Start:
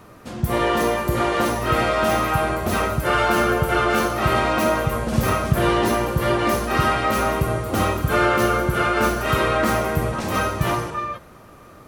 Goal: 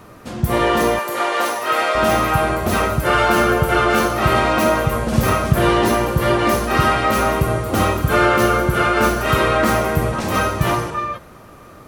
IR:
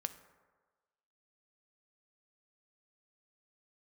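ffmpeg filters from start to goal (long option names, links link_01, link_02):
-filter_complex "[0:a]asettb=1/sr,asplit=3[link_01][link_02][link_03];[link_01]atrim=end=0.994[link_04];[link_02]atrim=start=0.99:end=1.95,asetpts=PTS-STARTPTS,afade=type=in:duration=0.004:curve=qsin,afade=type=out:start_time=0.956:duration=0.004:curve=qsin,highpass=530[link_05];[link_03]atrim=start=1.946[link_06];[link_04][link_05]acrossfade=duration=0.004:curve1=hsin:curve2=qsin[link_07];[link_07][link_06]acrossfade=duration=0.004:curve1=qsin:curve2=hsin,volume=3.5dB"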